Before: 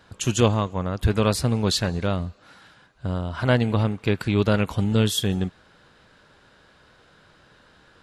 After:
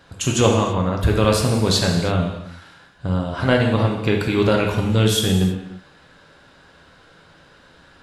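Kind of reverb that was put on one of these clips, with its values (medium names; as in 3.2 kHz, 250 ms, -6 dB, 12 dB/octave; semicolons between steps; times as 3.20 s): gated-style reverb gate 360 ms falling, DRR 0.5 dB; trim +2.5 dB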